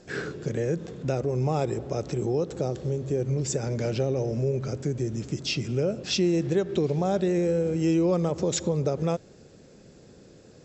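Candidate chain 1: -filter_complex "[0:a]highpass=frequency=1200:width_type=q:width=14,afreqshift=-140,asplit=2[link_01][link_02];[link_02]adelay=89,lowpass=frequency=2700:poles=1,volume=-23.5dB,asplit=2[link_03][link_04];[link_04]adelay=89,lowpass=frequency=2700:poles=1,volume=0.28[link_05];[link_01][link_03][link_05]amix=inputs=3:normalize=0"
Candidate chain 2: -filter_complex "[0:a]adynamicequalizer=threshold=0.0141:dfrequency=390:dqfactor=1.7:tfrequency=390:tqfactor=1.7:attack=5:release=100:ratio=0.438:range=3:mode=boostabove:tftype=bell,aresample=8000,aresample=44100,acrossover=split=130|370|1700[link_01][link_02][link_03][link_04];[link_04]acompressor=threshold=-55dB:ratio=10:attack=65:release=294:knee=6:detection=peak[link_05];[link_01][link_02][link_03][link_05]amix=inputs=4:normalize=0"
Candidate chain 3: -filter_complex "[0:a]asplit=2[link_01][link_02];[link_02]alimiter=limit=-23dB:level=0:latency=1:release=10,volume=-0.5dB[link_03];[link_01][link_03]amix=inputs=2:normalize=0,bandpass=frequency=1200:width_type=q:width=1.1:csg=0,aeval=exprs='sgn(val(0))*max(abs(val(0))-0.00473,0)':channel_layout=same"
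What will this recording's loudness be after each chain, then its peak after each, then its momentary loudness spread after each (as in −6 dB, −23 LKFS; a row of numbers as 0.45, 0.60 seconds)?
−32.0, −24.0, −35.0 LKFS; −12.0, −8.5, −19.0 dBFS; 14, 8, 7 LU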